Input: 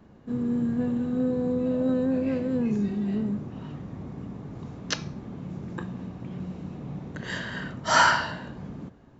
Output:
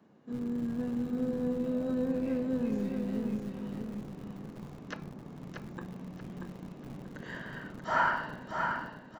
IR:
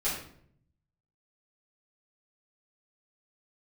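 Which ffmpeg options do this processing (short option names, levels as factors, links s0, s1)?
-filter_complex "[0:a]acrossover=split=130|2200[s0][s1][s2];[s0]acrusher=bits=4:dc=4:mix=0:aa=0.000001[s3];[s2]acompressor=threshold=0.00251:ratio=6[s4];[s3][s1][s4]amix=inputs=3:normalize=0,aecho=1:1:634|1268|1902|2536:0.562|0.191|0.065|0.0221,volume=0.447"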